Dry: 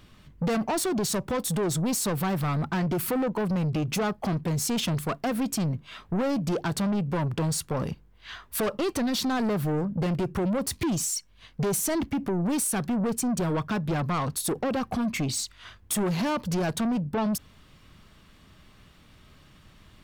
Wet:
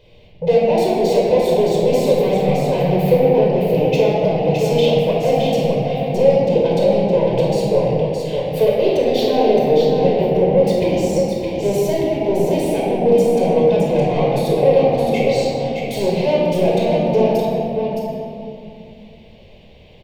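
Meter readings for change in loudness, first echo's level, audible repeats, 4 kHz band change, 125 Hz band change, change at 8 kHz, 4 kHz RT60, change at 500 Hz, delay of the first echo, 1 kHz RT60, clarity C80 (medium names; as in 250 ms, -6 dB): +11.5 dB, -5.0 dB, 1, +6.5 dB, +7.5 dB, -6.5 dB, 1.4 s, +18.0 dB, 616 ms, 2.4 s, -1.5 dB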